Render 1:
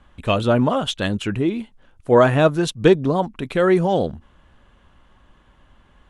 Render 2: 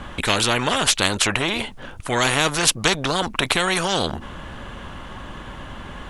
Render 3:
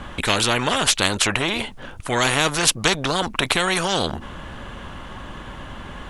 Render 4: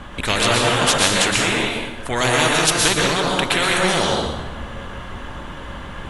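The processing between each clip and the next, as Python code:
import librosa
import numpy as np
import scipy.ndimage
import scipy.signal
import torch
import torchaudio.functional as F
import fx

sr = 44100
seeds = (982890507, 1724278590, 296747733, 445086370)

y1 = fx.spectral_comp(x, sr, ratio=4.0)
y2 = y1
y3 = fx.rev_plate(y2, sr, seeds[0], rt60_s=1.1, hf_ratio=0.75, predelay_ms=105, drr_db=-2.5)
y3 = y3 * 10.0 ** (-1.0 / 20.0)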